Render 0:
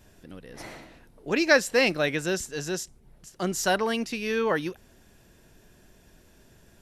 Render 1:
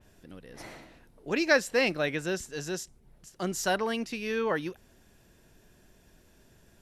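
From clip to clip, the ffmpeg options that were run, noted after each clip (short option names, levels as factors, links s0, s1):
-af "adynamicequalizer=threshold=0.0126:dfrequency=3800:dqfactor=0.7:tfrequency=3800:tqfactor=0.7:attack=5:release=100:ratio=0.375:range=2:mode=cutabove:tftype=highshelf,volume=0.668"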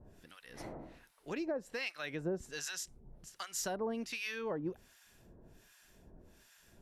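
-filter_complex "[0:a]acompressor=threshold=0.02:ratio=8,acrossover=split=1000[s0][s1];[s0]aeval=exprs='val(0)*(1-1/2+1/2*cos(2*PI*1.3*n/s))':c=same[s2];[s1]aeval=exprs='val(0)*(1-1/2-1/2*cos(2*PI*1.3*n/s))':c=same[s3];[s2][s3]amix=inputs=2:normalize=0,volume=1.5"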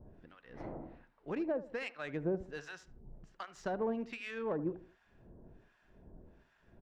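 -filter_complex "[0:a]asplit=2[s0][s1];[s1]adelay=76,lowpass=f=2000:p=1,volume=0.188,asplit=2[s2][s3];[s3]adelay=76,lowpass=f=2000:p=1,volume=0.36,asplit=2[s4][s5];[s5]adelay=76,lowpass=f=2000:p=1,volume=0.36[s6];[s0][s2][s4][s6]amix=inputs=4:normalize=0,adynamicsmooth=sensitivity=2:basefreq=1600,volume=1.33"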